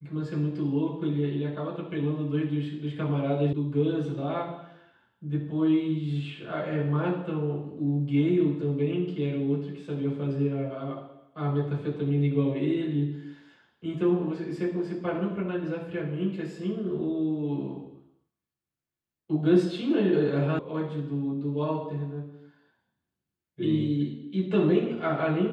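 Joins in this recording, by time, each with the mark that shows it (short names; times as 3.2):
3.53 sound cut off
20.59 sound cut off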